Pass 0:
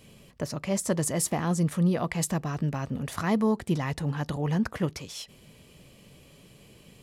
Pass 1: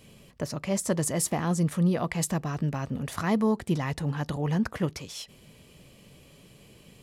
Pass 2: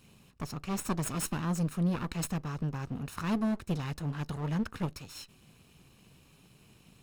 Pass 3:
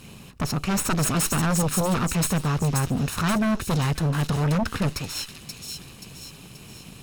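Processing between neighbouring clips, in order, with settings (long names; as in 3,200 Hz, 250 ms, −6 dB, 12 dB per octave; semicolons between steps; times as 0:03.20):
no processing that can be heard
lower of the sound and its delayed copy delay 0.75 ms; level −5 dB
sine wavefolder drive 11 dB, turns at −19 dBFS; delay with a high-pass on its return 530 ms, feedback 47%, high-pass 3,800 Hz, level −3 dB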